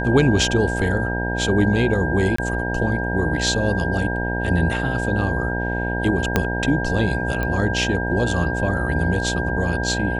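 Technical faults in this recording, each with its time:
buzz 60 Hz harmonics 16 -25 dBFS
whine 1.6 kHz -26 dBFS
2.36–2.38 s: dropout 24 ms
6.36 s: pop -3 dBFS
7.43 s: pop -12 dBFS

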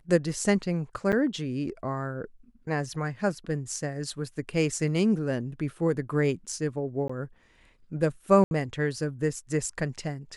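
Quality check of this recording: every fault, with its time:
1.12–1.13 s: dropout 7.6 ms
7.08–7.09 s: dropout 15 ms
8.44–8.51 s: dropout 71 ms

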